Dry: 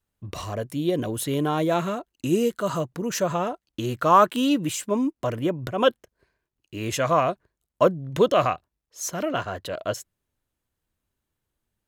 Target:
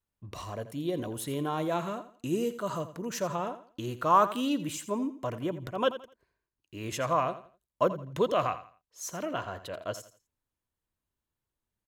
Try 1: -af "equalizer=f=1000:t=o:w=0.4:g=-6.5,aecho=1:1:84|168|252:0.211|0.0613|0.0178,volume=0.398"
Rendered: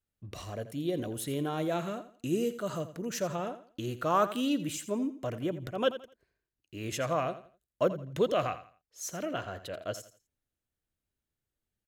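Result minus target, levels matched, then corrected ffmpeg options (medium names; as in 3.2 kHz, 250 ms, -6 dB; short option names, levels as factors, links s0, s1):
1 kHz band -3.5 dB
-af "equalizer=f=1000:t=o:w=0.4:g=4,aecho=1:1:84|168|252:0.211|0.0613|0.0178,volume=0.398"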